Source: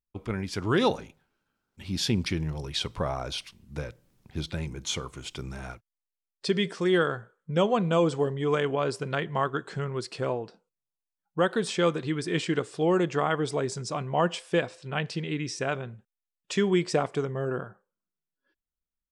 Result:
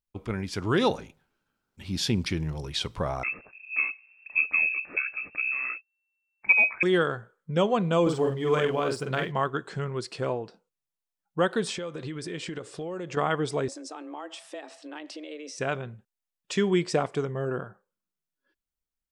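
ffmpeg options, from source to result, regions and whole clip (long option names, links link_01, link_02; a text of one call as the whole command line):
ffmpeg -i in.wav -filter_complex "[0:a]asettb=1/sr,asplit=3[link_01][link_02][link_03];[link_01]atrim=end=3.234[link_04];[link_02]atrim=start=3.23:end=6.83,asetpts=PTS-STARTPTS,afade=type=in:duration=0.004:curve=qsin,afade=type=out:start_time=3.596:duration=0.004:curve=qsin,lowshelf=frequency=370:gain=9.5,lowpass=frequency=2300:width_type=q:width=0.5098,lowpass=frequency=2300:width_type=q:width=0.6013,lowpass=frequency=2300:width_type=q:width=0.9,lowpass=frequency=2300:width_type=q:width=2.563,afreqshift=-2700[link_05];[link_03]atrim=start=6.826[link_06];[link_04][link_05]acrossfade=duration=0.004:curve1=hsin:curve2=qsin[link_07];[link_07][link_06]acrossfade=duration=0.004:curve1=qsin:curve2=hsin,asettb=1/sr,asplit=3[link_08][link_09][link_10];[link_08]atrim=end=8.024[link_11];[link_09]atrim=start=8.02:end=9.32,asetpts=PTS-STARTPTS,afade=type=in:duration=0.004:curve=qsin,afade=type=out:start_time=1.296:duration=0.004:curve=qsin,aeval=exprs='sgn(val(0))*max(abs(val(0))-0.00178,0)':channel_layout=same,asplit=2[link_12][link_13];[link_13]adelay=46,volume=-3.5dB[link_14];[link_12][link_14]amix=inputs=2:normalize=0,atrim=end_sample=57330[link_15];[link_10]atrim=start=9.316[link_16];[link_11][link_15]acrossfade=duration=0.004:curve1=hsin:curve2=qsin[link_17];[link_17][link_16]acrossfade=duration=0.004:curve1=qsin:curve2=hsin,asettb=1/sr,asplit=3[link_18][link_19][link_20];[link_18]atrim=end=11.774[link_21];[link_19]atrim=start=11.77:end=13.17,asetpts=PTS-STARTPTS,afade=type=in:duration=0.004:curve=qsin,afade=type=out:start_time=1.396:duration=0.004:curve=qsin,equalizer=frequency=550:width=5.6:gain=6,acompressor=threshold=-31dB:ratio=10:attack=3.2:release=140:knee=1:detection=peak[link_22];[link_20]atrim=start=13.166[link_23];[link_21][link_22]acrossfade=duration=0.004:curve1=hsin:curve2=qsin[link_24];[link_24][link_23]acrossfade=duration=0.004:curve1=qsin:curve2=hsin,asettb=1/sr,asplit=3[link_25][link_26][link_27];[link_25]atrim=end=13.684[link_28];[link_26]atrim=start=13.68:end=15.58,asetpts=PTS-STARTPTS,afade=type=in:duration=0.004:curve=qsin,afade=type=out:start_time=1.896:duration=0.004:curve=qsin,acompressor=threshold=-38dB:ratio=4:attack=3.2:release=140:knee=1:detection=peak,afreqshift=150[link_29];[link_27]atrim=start=15.576[link_30];[link_28][link_29]acrossfade=duration=0.004:curve1=hsin:curve2=qsin[link_31];[link_31][link_30]acrossfade=duration=0.004:curve1=qsin:curve2=hsin" out.wav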